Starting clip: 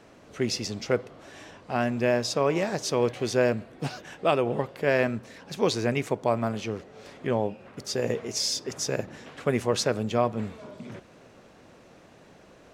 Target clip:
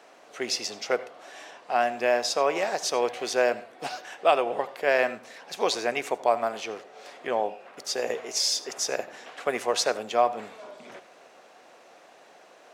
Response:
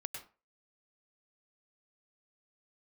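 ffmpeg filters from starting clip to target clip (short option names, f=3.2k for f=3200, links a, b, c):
-filter_complex "[0:a]highpass=530,equalizer=f=730:t=o:w=0.24:g=6,asplit=2[a][b];[1:a]atrim=start_sample=2205,asetrate=57330,aresample=44100[c];[b][c]afir=irnorm=-1:irlink=0,volume=-4.5dB[d];[a][d]amix=inputs=2:normalize=0"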